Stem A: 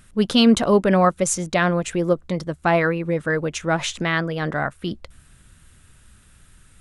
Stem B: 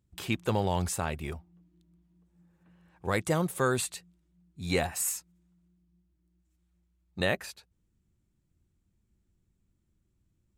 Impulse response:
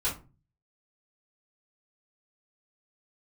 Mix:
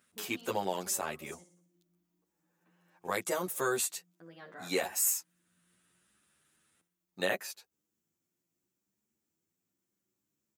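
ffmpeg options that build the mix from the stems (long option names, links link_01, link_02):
-filter_complex "[0:a]acompressor=threshold=-33dB:ratio=2,volume=-12.5dB,asplit=3[link_01][link_02][link_03];[link_01]atrim=end=1.43,asetpts=PTS-STARTPTS,afade=type=out:start_time=1.426:duration=0.004:curve=hsin[link_04];[link_02]atrim=start=1.43:end=4.2,asetpts=PTS-STARTPTS,volume=0[link_05];[link_03]atrim=start=4.2,asetpts=PTS-STARTPTS,afade=type=in:duration=0.004:curve=hsin[link_06];[link_04][link_05][link_06]concat=n=3:v=0:a=1,asplit=2[link_07][link_08];[link_08]volume=-15.5dB[link_09];[1:a]aexciter=amount=2.1:drive=3.6:freq=5400,lowshelf=frequency=170:gain=-4.5,volume=0.5dB,asplit=2[link_10][link_11];[link_11]apad=whole_len=299933[link_12];[link_07][link_12]sidechaincompress=threshold=-36dB:ratio=8:attack=16:release=587[link_13];[link_09]aecho=0:1:60|120|180|240|300|360|420:1|0.5|0.25|0.125|0.0625|0.0312|0.0156[link_14];[link_13][link_10][link_14]amix=inputs=3:normalize=0,highpass=260,asplit=2[link_15][link_16];[link_16]adelay=9.8,afreqshift=0.75[link_17];[link_15][link_17]amix=inputs=2:normalize=1"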